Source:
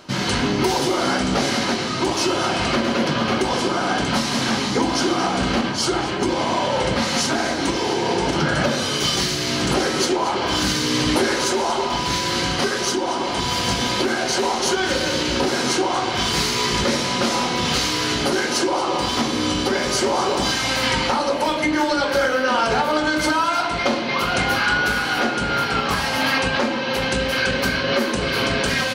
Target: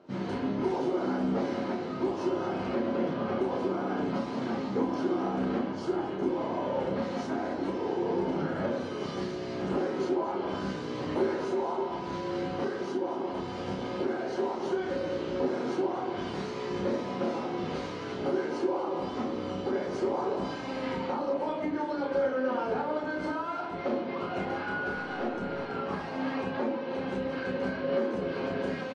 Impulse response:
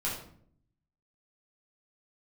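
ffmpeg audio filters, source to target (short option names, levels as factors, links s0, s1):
-filter_complex "[0:a]bandpass=f=360:t=q:w=0.88:csg=0,aecho=1:1:11|31|42:0.299|0.562|0.224,asettb=1/sr,asplit=3[s0][s1][s2];[s0]atrim=end=24.974[s3];[s1]atrim=start=24.97:end=25.7,asetpts=PTS-STARTPTS,afade=t=in:d=0.004:c=qsin,afade=t=out:st=0.726:d=0.004:c=qsin,aeval=exprs='0.237*(cos(1*acos(clip(val(0)/0.237,-1,1)))-cos(1*PI/2))+0.00596*(cos(8*acos(clip(val(0)/0.237,-1,1)))-cos(8*PI/2))':c=same[s4];[s2]atrim=start=25.696[s5];[s3][s4]acrossfade=d=0.004:c1=hsin:c2=qsin[s6];[s6][s5]acrossfade=d=0.004:c1=qsin:c2=hsin,volume=0.398" -ar 22050 -c:a aac -b:a 32k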